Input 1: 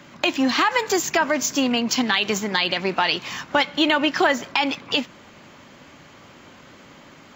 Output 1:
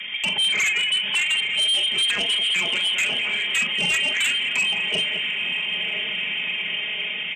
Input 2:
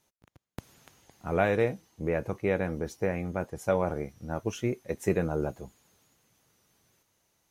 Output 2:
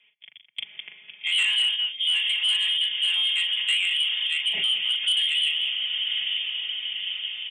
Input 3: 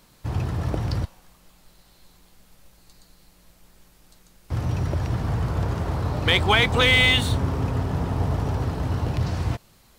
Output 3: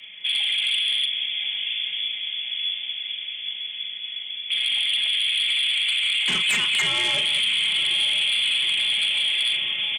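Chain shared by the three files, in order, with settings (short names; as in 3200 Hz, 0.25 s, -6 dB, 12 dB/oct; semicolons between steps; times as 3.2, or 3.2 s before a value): resonant high shelf 1600 Hz -8.5 dB, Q 3; comb 4.7 ms, depth 97%; compressor 2:1, threshold -24 dBFS; soft clip -11 dBFS; inverted band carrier 3300 Hz; diffused feedback echo 0.962 s, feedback 65%, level -12 dB; frequency shift +96 Hz; tapped delay 40/207 ms -7/-11.5 dB; sine folder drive 8 dB, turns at -9.5 dBFS; limiter -16 dBFS; gain -1.5 dB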